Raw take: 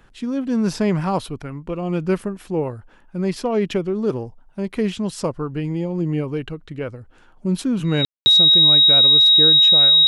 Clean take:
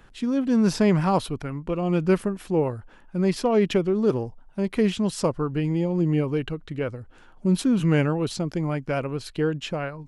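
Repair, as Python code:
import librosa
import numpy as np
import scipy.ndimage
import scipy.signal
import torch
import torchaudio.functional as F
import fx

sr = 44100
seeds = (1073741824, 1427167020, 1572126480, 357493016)

y = fx.notch(x, sr, hz=3800.0, q=30.0)
y = fx.fix_ambience(y, sr, seeds[0], print_start_s=6.95, print_end_s=7.45, start_s=8.05, end_s=8.26)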